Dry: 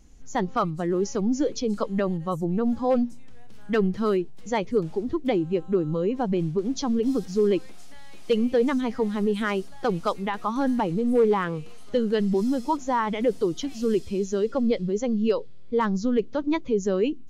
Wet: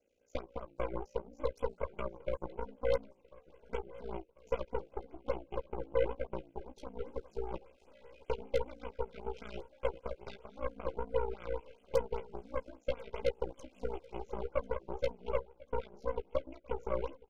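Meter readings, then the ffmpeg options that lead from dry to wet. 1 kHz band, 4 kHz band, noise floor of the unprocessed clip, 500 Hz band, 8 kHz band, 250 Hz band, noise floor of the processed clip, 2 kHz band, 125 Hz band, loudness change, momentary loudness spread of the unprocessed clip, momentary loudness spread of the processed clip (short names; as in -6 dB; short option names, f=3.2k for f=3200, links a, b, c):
-14.0 dB, -15.5 dB, -36 dBFS, -12.0 dB, n/a, -26.0 dB, -68 dBFS, -14.5 dB, -15.0 dB, -14.5 dB, 5 LU, 10 LU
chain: -filter_complex "[0:a]equalizer=f=170:t=o:w=0.43:g=-14.5,bandreject=f=50:t=h:w=6,bandreject=f=100:t=h:w=6,bandreject=f=150:t=h:w=6,bandreject=f=200:t=h:w=6,bandreject=f=250:t=h:w=6,alimiter=limit=-18.5dB:level=0:latency=1:release=57,acompressor=threshold=-34dB:ratio=5,asplit=3[a][b][c];[a]bandpass=f=530:t=q:w=8,volume=0dB[d];[b]bandpass=f=1.84k:t=q:w=8,volume=-6dB[e];[c]bandpass=f=2.48k:t=q:w=8,volume=-9dB[f];[d][e][f]amix=inputs=3:normalize=0,aeval=exprs='val(0)*sin(2*PI*29*n/s)':c=same,aeval=exprs='0.0251*(cos(1*acos(clip(val(0)/0.0251,-1,1)))-cos(1*PI/2))+0.00355*(cos(4*acos(clip(val(0)/0.0251,-1,1)))-cos(4*PI/2))+0.002*(cos(7*acos(clip(val(0)/0.0251,-1,1)))-cos(7*PI/2))+0.00224*(cos(8*acos(clip(val(0)/0.0251,-1,1)))-cos(8*PI/2))':c=same,asuperstop=centerf=1800:order=8:qfactor=4.8,asplit=2[g][h];[h]adelay=15,volume=-8dB[i];[g][i]amix=inputs=2:normalize=0,aecho=1:1:1044|2088|3132:0.0891|0.041|0.0189,afftfilt=real='re*(1-between(b*sr/1024,900*pow(5000/900,0.5+0.5*sin(2*PI*5.1*pts/sr))/1.41,900*pow(5000/900,0.5+0.5*sin(2*PI*5.1*pts/sr))*1.41))':imag='im*(1-between(b*sr/1024,900*pow(5000/900,0.5+0.5*sin(2*PI*5.1*pts/sr))/1.41,900*pow(5000/900,0.5+0.5*sin(2*PI*5.1*pts/sr))*1.41))':win_size=1024:overlap=0.75,volume=10.5dB"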